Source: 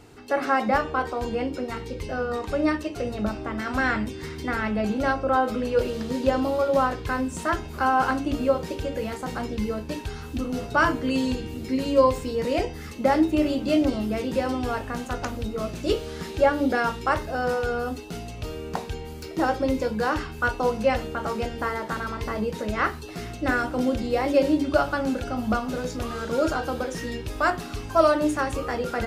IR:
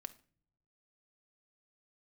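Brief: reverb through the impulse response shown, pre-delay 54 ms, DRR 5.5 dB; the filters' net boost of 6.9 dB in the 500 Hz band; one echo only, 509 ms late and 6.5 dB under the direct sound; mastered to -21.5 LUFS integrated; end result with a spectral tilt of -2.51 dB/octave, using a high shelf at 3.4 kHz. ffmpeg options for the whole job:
-filter_complex "[0:a]equalizer=f=500:t=o:g=8,highshelf=f=3400:g=-9,aecho=1:1:509:0.473,asplit=2[s0][s1];[1:a]atrim=start_sample=2205,adelay=54[s2];[s1][s2]afir=irnorm=-1:irlink=0,volume=0.891[s3];[s0][s3]amix=inputs=2:normalize=0,volume=0.794"

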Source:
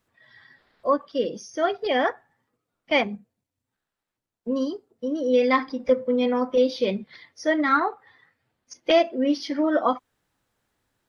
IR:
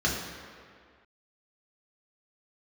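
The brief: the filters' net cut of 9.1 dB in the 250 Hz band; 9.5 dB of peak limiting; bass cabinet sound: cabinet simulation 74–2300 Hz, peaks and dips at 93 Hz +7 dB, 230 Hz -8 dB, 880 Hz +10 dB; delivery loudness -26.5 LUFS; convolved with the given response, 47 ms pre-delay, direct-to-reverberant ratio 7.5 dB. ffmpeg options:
-filter_complex "[0:a]equalizer=f=250:t=o:g=-8,alimiter=limit=0.126:level=0:latency=1,asplit=2[s0][s1];[1:a]atrim=start_sample=2205,adelay=47[s2];[s1][s2]afir=irnorm=-1:irlink=0,volume=0.106[s3];[s0][s3]amix=inputs=2:normalize=0,highpass=f=74:w=0.5412,highpass=f=74:w=1.3066,equalizer=f=93:t=q:w=4:g=7,equalizer=f=230:t=q:w=4:g=-8,equalizer=f=880:t=q:w=4:g=10,lowpass=f=2300:w=0.5412,lowpass=f=2300:w=1.3066,volume=1.19"

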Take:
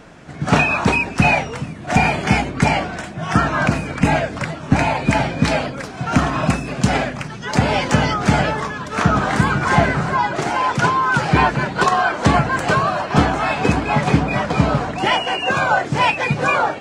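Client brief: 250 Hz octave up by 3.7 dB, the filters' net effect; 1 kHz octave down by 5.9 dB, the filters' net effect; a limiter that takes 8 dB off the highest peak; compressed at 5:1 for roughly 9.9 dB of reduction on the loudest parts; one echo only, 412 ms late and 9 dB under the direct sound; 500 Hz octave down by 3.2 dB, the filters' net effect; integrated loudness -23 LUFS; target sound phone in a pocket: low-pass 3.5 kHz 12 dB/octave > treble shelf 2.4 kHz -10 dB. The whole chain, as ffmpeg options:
-af "equalizer=f=250:t=o:g=6,equalizer=f=500:t=o:g=-3.5,equalizer=f=1000:t=o:g=-5,acompressor=threshold=0.112:ratio=5,alimiter=limit=0.188:level=0:latency=1,lowpass=3500,highshelf=f=2400:g=-10,aecho=1:1:412:0.355,volume=1.41"

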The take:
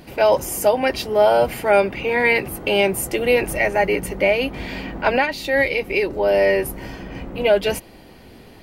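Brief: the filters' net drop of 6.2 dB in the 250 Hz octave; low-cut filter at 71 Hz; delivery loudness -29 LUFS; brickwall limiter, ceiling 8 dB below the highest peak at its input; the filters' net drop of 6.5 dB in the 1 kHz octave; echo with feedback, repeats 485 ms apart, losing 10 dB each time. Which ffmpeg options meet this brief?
-af "highpass=71,equalizer=f=250:t=o:g=-8,equalizer=f=1000:t=o:g=-8.5,alimiter=limit=0.178:level=0:latency=1,aecho=1:1:485|970|1455|1940:0.316|0.101|0.0324|0.0104,volume=0.631"

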